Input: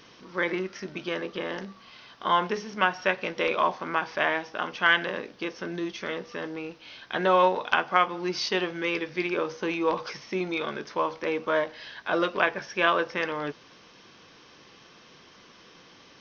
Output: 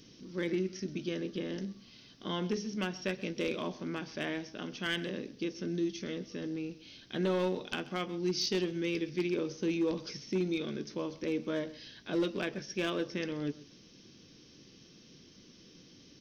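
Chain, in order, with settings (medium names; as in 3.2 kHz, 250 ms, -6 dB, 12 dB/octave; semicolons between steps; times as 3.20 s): FFT filter 290 Hz 0 dB, 980 Hz -23 dB, 5.8 kHz -2 dB; overload inside the chain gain 26.5 dB; on a send: delay 131 ms -19 dB; on the sum: trim +2 dB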